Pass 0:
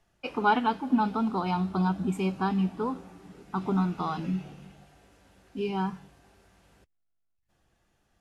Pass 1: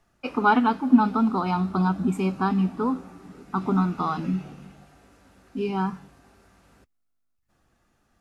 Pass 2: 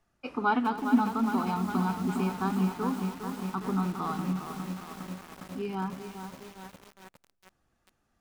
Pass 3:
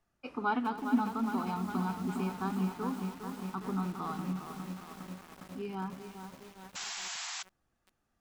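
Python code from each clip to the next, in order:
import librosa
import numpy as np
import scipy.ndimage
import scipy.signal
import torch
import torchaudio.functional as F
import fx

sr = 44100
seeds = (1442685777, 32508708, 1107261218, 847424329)

y1 = fx.graphic_eq_31(x, sr, hz=(250, 1250, 3150), db=(7, 6, -4))
y1 = y1 * librosa.db_to_amplitude(2.5)
y2 = fx.echo_feedback(y1, sr, ms=254, feedback_pct=43, wet_db=-16.0)
y2 = fx.echo_crushed(y2, sr, ms=408, feedback_pct=80, bits=6, wet_db=-7)
y2 = y2 * librosa.db_to_amplitude(-7.0)
y3 = fx.spec_paint(y2, sr, seeds[0], shape='noise', start_s=6.75, length_s=0.68, low_hz=670.0, high_hz=7800.0, level_db=-35.0)
y3 = y3 * librosa.db_to_amplitude(-5.0)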